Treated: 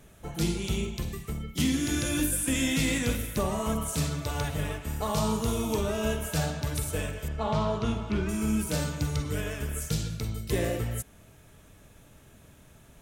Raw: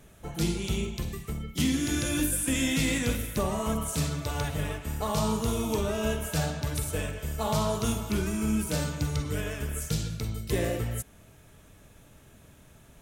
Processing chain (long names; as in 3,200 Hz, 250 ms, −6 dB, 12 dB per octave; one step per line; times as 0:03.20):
0:07.28–0:08.29: low-pass filter 3,200 Hz 12 dB per octave